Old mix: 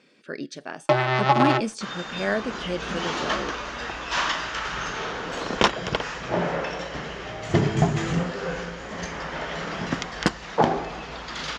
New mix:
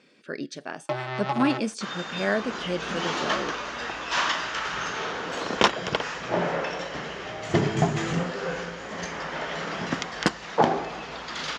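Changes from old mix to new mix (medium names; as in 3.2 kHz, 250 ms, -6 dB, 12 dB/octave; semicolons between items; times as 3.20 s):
first sound -9.5 dB; second sound: add high-pass 160 Hz 6 dB/octave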